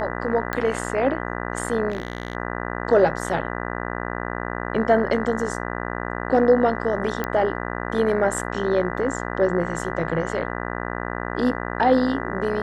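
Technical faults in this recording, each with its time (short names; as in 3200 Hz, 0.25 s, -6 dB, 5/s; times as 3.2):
buzz 60 Hz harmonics 33 -29 dBFS
0.53 pop -11 dBFS
1.89–2.35 clipped -21 dBFS
7.24 pop -12 dBFS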